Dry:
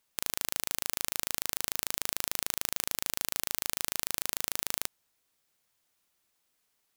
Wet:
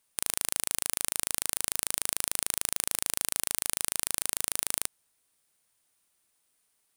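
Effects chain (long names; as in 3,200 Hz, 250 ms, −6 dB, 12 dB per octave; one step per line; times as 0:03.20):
parametric band 9,300 Hz +11.5 dB 0.28 octaves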